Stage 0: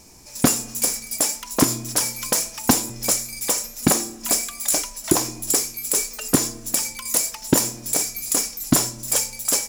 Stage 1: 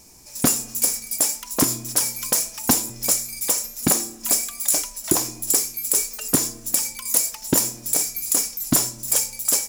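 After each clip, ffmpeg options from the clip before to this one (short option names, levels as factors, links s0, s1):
-af "highshelf=f=7500:g=7.5,volume=0.668"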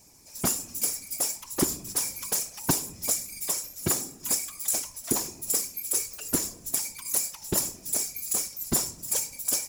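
-af "afftfilt=real='hypot(re,im)*cos(2*PI*random(0))':imag='hypot(re,im)*sin(2*PI*random(1))':win_size=512:overlap=0.75,volume=0.891"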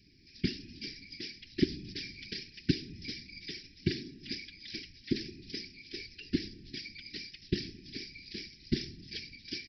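-af "aresample=11025,aresample=44100,asuperstop=centerf=830:order=12:qfactor=0.6"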